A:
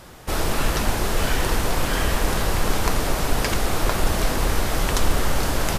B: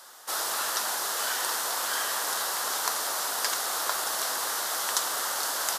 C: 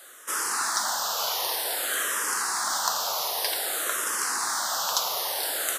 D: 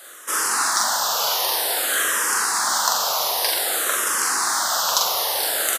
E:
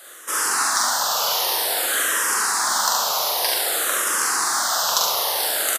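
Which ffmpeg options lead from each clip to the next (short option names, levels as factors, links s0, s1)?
-af "highpass=1200,equalizer=f=2400:t=o:w=0.78:g=-13.5,volume=1.33"
-filter_complex "[0:a]aeval=exprs='0.501*(cos(1*acos(clip(val(0)/0.501,-1,1)))-cos(1*PI/2))+0.0224*(cos(5*acos(clip(val(0)/0.501,-1,1)))-cos(5*PI/2))':c=same,asplit=2[s0][s1];[s1]afreqshift=-0.53[s2];[s0][s2]amix=inputs=2:normalize=1,volume=1.41"
-filter_complex "[0:a]asplit=2[s0][s1];[s1]adelay=43,volume=0.631[s2];[s0][s2]amix=inputs=2:normalize=0,volume=1.78"
-af "aecho=1:1:71:0.562,volume=0.891"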